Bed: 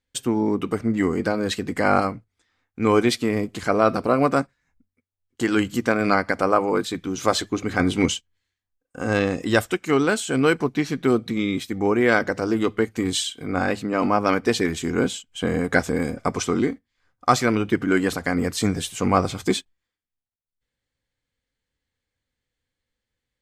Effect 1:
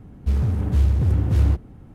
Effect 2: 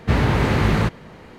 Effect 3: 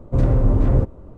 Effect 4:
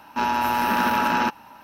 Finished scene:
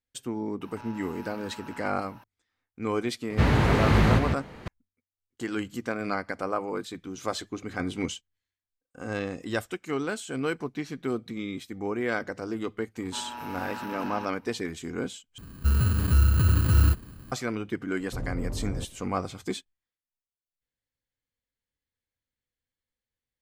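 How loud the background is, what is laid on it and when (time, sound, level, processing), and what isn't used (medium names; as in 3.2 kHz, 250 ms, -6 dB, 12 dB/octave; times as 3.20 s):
bed -10.5 dB
0.61 s: add 4 -7 dB + compression 4:1, threshold -39 dBFS
3.30 s: add 2 -3.5 dB + chunks repeated in reverse 562 ms, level -6 dB
12.96 s: add 4 -16.5 dB
15.38 s: replace with 1 -2 dB + bit-reversed sample order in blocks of 32 samples
18.00 s: add 3 -14.5 dB + saturation -12 dBFS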